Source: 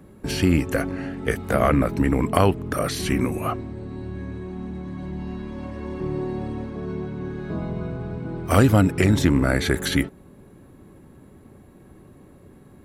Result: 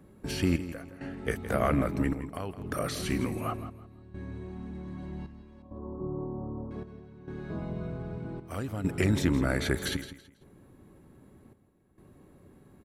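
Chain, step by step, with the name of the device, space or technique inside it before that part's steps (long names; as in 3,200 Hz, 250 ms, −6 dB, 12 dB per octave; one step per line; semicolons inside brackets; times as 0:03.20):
0:05.62–0:06.71: elliptic low-pass filter 1,200 Hz, stop band 40 dB
trance gate with a delay (gate pattern "xxxxx....xxxxx" 134 BPM −12 dB; repeating echo 164 ms, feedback 26%, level −13 dB)
level −7.5 dB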